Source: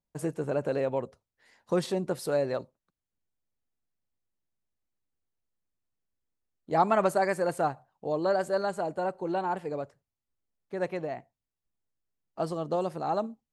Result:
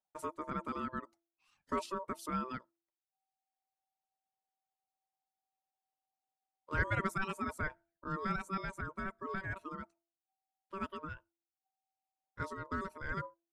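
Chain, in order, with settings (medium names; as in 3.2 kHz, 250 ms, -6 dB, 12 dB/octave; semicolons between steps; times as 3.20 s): ring modulator 770 Hz; reverb removal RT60 0.84 s; de-hum 337.2 Hz, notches 2; trim -6 dB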